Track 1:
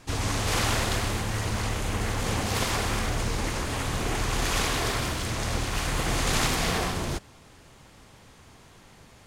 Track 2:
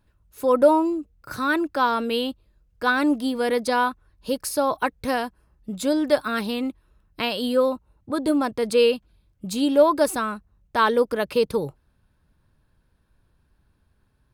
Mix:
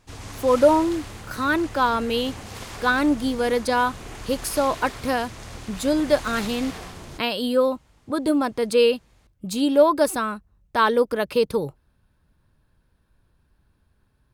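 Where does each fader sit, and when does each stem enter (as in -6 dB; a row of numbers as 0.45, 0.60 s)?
-10.0, +0.5 dB; 0.00, 0.00 s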